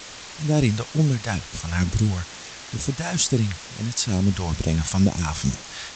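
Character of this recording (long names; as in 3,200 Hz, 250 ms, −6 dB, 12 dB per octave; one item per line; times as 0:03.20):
phaser sweep stages 2, 2.2 Hz, lowest notch 270–1,700 Hz
a quantiser's noise floor 6 bits, dither triangular
G.722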